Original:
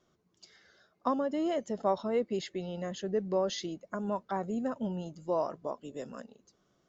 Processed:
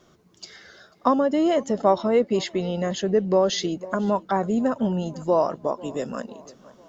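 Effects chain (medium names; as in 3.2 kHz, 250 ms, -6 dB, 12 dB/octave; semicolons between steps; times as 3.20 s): tape echo 495 ms, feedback 44%, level -22 dB, low-pass 4.6 kHz; in parallel at -0.5 dB: compression, threshold -44 dBFS, peak gain reduction 19.5 dB; on the sum: trim +9 dB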